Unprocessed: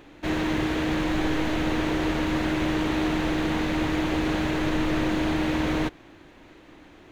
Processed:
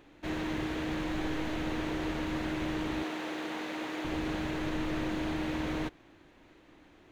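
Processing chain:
0:03.03–0:04.05: high-pass filter 340 Hz 12 dB per octave
level −8.5 dB

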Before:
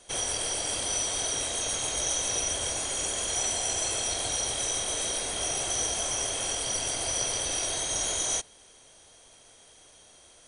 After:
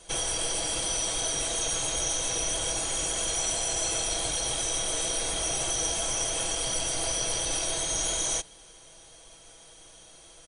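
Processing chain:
parametric band 1,900 Hz −2.5 dB 0.29 octaves
in parallel at +2 dB: brickwall limiter −25.5 dBFS, peak gain reduction 8.5 dB
on the sum: low-shelf EQ 74 Hz +8.5 dB
comb filter 6.1 ms, depth 54%
level −5 dB

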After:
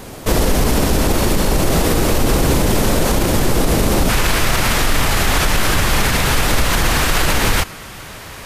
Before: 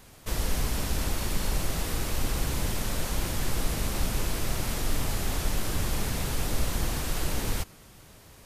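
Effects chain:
parametric band 390 Hz +8.5 dB 2.6 octaves, from 0:04.09 1,700 Hz
boost into a limiter +20 dB
level −4.5 dB

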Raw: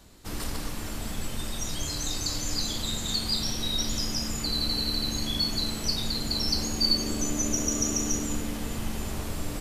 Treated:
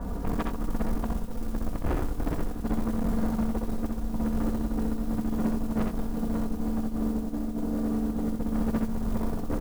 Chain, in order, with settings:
low-pass filter 1,400 Hz 24 dB per octave
tilt shelving filter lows +4 dB
comb filter 4.2 ms, depth 64%
compressor whose output falls as the input rises −31 dBFS, ratio −0.5
sine wavefolder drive 5 dB, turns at −16 dBFS
noise that follows the level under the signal 26 dB
soft clipping −24.5 dBFS, distortion −11 dB
multi-tap delay 64/86/630 ms −4.5/−9/−19 dB

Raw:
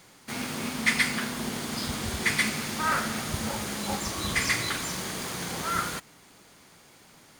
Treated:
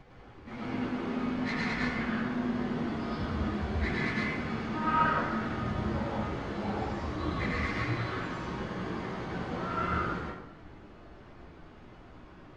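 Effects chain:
phase distortion by the signal itself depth 0.14 ms
background noise pink −51 dBFS
time stretch by phase vocoder 1.7×
head-to-tape spacing loss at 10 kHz 40 dB
dense smooth reverb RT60 0.82 s, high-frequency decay 0.6×, pre-delay 90 ms, DRR −4 dB

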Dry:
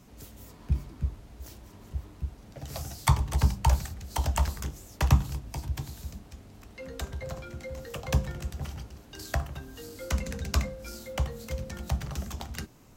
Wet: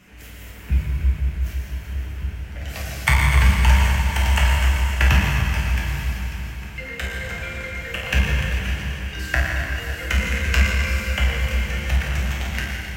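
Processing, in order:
flat-topped bell 2,100 Hz +13 dB 1.3 octaves
convolution reverb RT60 4.0 s, pre-delay 7 ms, DRR −5.5 dB

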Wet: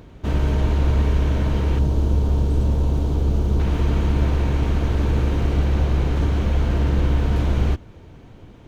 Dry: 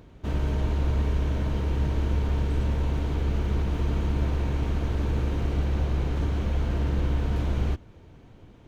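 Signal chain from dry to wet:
0:01.79–0:03.60: parametric band 2,000 Hz −12.5 dB 1.4 octaves
level +6.5 dB

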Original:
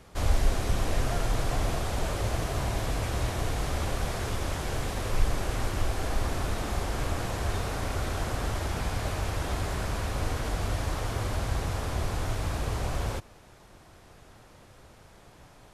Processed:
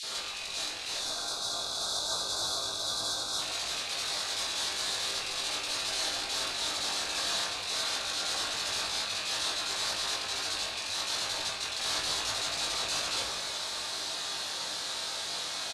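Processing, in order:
loose part that buzzes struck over −26 dBFS, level −17 dBFS
meter weighting curve ITU-R 468
gain on a spectral selection 0:00.96–0:03.39, 1,600–3,300 Hz −21 dB
parametric band 4,000 Hz +11.5 dB 0.5 octaves
compressor whose output falls as the input rises −33 dBFS, ratio −0.5
brickwall limiter −24 dBFS, peak gain reduction 8.5 dB
double-tracking delay 20 ms −4.5 dB
multiband delay without the direct sound highs, lows 30 ms, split 2,500 Hz
convolution reverb RT60 1.7 s, pre-delay 4 ms, DRR −2 dB

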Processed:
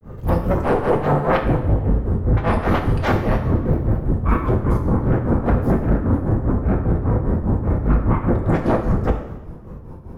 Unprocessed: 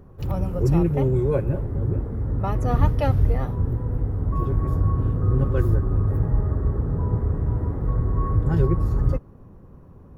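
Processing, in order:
sine wavefolder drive 15 dB, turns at −6.5 dBFS
granular cloud 229 ms, grains 5 per second, pitch spread up and down by 3 semitones
coupled-rooms reverb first 0.83 s, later 2.5 s, DRR 3.5 dB
level −6 dB

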